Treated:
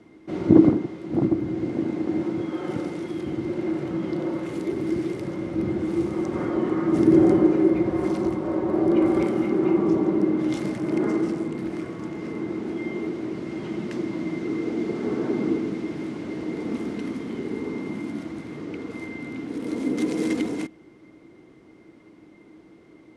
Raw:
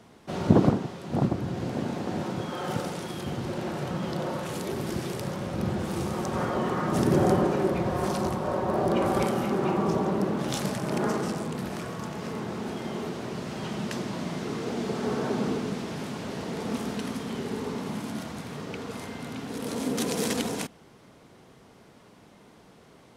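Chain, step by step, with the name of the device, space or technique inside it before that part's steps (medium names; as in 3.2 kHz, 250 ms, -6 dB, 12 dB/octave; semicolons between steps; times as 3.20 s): low-pass 11 kHz 24 dB/octave; peaking EQ 810 Hz -3 dB 0.77 oct; inside a helmet (treble shelf 3.2 kHz -8.5 dB; small resonant body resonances 320/2100 Hz, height 18 dB, ringing for 75 ms); trim -2.5 dB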